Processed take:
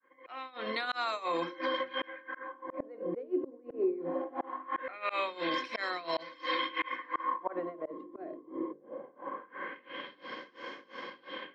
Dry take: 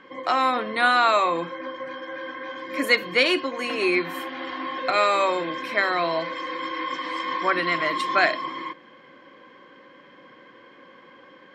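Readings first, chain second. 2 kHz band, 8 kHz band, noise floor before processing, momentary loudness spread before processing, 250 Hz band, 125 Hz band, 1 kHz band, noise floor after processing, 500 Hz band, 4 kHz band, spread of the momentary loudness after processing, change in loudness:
-14.5 dB, under -20 dB, -50 dBFS, 14 LU, -8.5 dB, -12.0 dB, -12.5 dB, -60 dBFS, -9.5 dB, -11.5 dB, 12 LU, -13.0 dB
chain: opening faded in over 1.49 s; tremolo 2.9 Hz, depth 91%; HPF 230 Hz 12 dB/oct; transient shaper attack +3 dB, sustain -3 dB; notches 50/100/150/200/250/300/350/400/450 Hz; auto swell 0.687 s; limiter -31 dBFS, peak gain reduction 10 dB; LFO low-pass sine 0.21 Hz 380–5900 Hz; gain +7 dB

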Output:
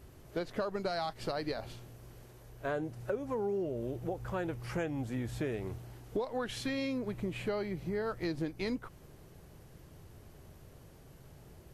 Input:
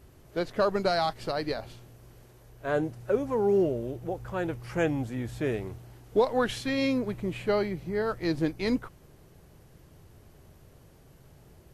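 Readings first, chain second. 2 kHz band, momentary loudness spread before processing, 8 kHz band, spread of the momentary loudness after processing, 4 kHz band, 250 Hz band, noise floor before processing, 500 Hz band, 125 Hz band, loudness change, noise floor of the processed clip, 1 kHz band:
-7.0 dB, 10 LU, -4.0 dB, 21 LU, -7.0 dB, -7.0 dB, -56 dBFS, -8.5 dB, -4.5 dB, -7.5 dB, -56 dBFS, -8.0 dB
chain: compressor 6:1, threshold -32 dBFS, peak gain reduction 13.5 dB

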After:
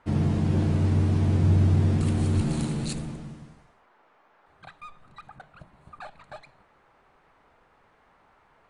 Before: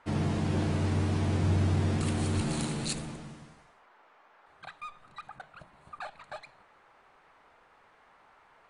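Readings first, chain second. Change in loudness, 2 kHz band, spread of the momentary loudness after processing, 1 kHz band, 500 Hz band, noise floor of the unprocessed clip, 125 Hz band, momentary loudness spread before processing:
+5.5 dB, -2.0 dB, 16 LU, -1.0 dB, +2.0 dB, -62 dBFS, +6.5 dB, 20 LU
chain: low shelf 380 Hz +10 dB; gain -2.5 dB

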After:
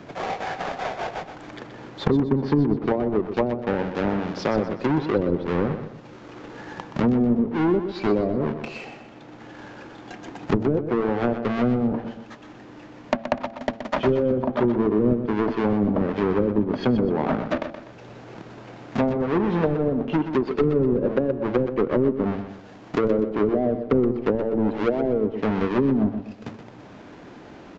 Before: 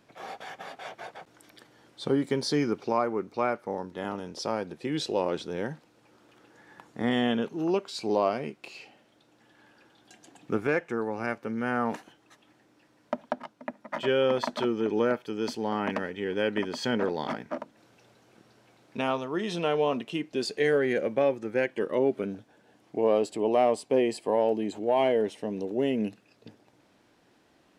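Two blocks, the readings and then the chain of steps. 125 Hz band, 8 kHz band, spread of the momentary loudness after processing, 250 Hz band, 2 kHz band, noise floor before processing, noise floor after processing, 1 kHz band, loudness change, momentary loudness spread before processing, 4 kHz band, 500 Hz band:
+12.5 dB, n/a, 19 LU, +9.0 dB, +1.0 dB, -64 dBFS, -44 dBFS, +2.5 dB, +5.0 dB, 15 LU, -3.0 dB, +4.0 dB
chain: half-waves squared off; high shelf 5300 Hz -11 dB; de-hum 112.8 Hz, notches 7; treble ducked by the level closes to 350 Hz, closed at -19.5 dBFS; on a send: feedback echo 0.124 s, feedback 33%, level -10 dB; on the sum: downsampling 16000 Hz; three-band squash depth 40%; gain +5 dB

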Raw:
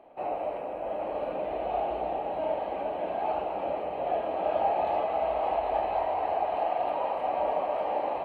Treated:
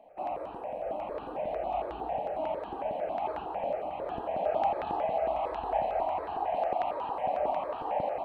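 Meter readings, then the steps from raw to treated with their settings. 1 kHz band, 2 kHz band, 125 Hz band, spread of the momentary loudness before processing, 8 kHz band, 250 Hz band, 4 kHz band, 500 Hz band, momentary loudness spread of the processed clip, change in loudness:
-2.5 dB, -3.5 dB, 0.0 dB, 5 LU, n/a, -3.0 dB, -3.0 dB, -3.0 dB, 6 LU, -2.5 dB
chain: step phaser 11 Hz 360–2100 Hz

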